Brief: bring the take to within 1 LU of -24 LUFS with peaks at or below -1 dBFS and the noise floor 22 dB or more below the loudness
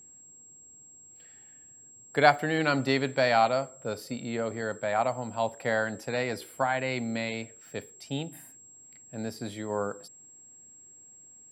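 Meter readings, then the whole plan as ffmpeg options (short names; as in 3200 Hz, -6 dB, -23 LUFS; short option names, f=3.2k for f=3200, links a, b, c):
steady tone 7600 Hz; tone level -50 dBFS; loudness -29.0 LUFS; peak -5.0 dBFS; loudness target -24.0 LUFS
-> -af "bandreject=f=7.6k:w=30"
-af "volume=5dB,alimiter=limit=-1dB:level=0:latency=1"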